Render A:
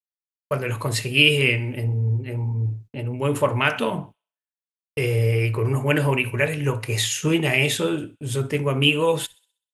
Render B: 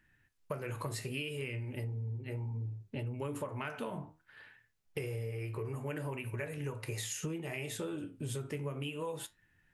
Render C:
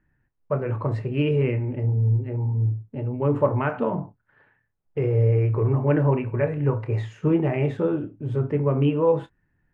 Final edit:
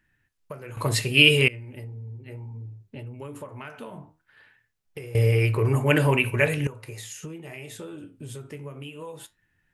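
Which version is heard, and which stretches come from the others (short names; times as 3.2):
B
0.77–1.48 from A
5.15–6.67 from A
not used: C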